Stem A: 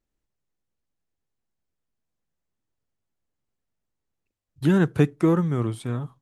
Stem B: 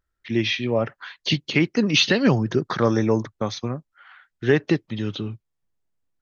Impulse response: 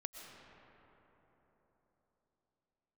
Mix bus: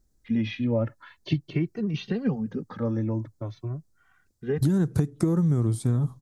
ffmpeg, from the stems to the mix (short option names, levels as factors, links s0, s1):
-filter_complex "[0:a]aexciter=amount=14.1:drive=3.4:freq=4300,acompressor=threshold=0.0631:ratio=6,volume=1.33,asplit=2[s0][s1];[1:a]asplit=2[s2][s3];[s3]adelay=2.1,afreqshift=0.45[s4];[s2][s4]amix=inputs=2:normalize=1,volume=0.596,afade=t=out:st=1.37:d=0.28:silence=0.446684[s5];[s1]apad=whole_len=274306[s6];[s5][s6]sidechaincompress=threshold=0.00501:ratio=10:attack=16:release=843[s7];[s0][s7]amix=inputs=2:normalize=0,lowpass=f=1600:p=1,lowshelf=f=340:g=12,acompressor=threshold=0.1:ratio=4"